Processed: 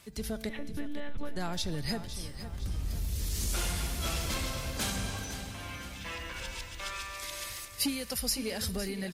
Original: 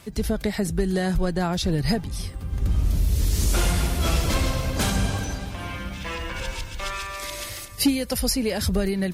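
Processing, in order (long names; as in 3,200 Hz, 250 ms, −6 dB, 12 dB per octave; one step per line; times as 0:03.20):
0:00.49–0:01.36: one-pitch LPC vocoder at 8 kHz 290 Hz
tuned comb filter 220 Hz, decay 1.5 s, mix 60%
repeating echo 509 ms, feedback 48%, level −12 dB
in parallel at −3.5 dB: soft clipping −21.5 dBFS, distortion −21 dB
on the sum: tilt shelving filter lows −3.5 dB, about 1,300 Hz
level −5.5 dB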